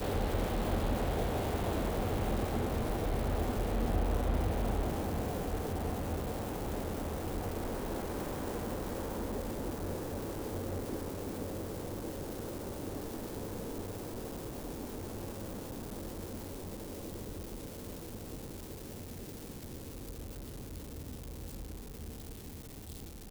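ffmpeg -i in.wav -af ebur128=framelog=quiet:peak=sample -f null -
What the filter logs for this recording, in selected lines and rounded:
Integrated loudness:
  I:         -38.0 LUFS
  Threshold: -48.0 LUFS
Loudness range:
  LRA:        11.2 LU
  Threshold: -58.3 LUFS
  LRA low:   -45.2 LUFS
  LRA high:  -34.0 LUFS
Sample peak:
  Peak:      -19.4 dBFS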